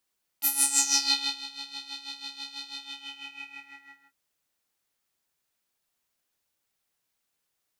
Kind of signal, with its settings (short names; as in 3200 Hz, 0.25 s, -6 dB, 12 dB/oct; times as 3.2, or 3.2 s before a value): synth patch with tremolo C#4, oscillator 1 square, oscillator 2 square, interval +19 st, detune 28 cents, sub -13 dB, filter bandpass, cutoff 1700 Hz, Q 5.7, filter envelope 3 oct, filter decay 0.73 s, attack 28 ms, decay 0.97 s, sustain -23 dB, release 1.41 s, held 2.30 s, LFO 6.1 Hz, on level 12 dB